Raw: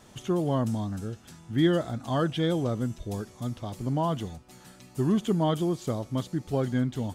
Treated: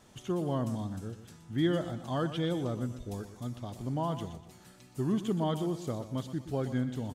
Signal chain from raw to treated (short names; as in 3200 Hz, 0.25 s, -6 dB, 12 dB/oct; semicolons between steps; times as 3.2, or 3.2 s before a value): feedback echo 0.122 s, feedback 39%, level -12 dB; gain -5.5 dB